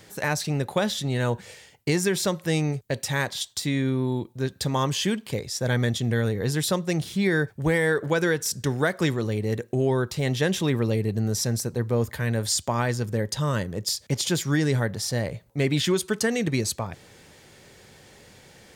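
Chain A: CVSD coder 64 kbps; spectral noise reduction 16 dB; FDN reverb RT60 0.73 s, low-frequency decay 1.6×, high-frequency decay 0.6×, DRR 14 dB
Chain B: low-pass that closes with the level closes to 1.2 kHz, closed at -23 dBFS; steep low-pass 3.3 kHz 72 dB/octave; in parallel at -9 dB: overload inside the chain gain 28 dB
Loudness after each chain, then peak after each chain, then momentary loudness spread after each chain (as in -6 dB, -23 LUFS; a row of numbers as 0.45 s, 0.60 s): -26.5 LUFS, -25.5 LUFS; -11.0 dBFS, -11.5 dBFS; 6 LU, 6 LU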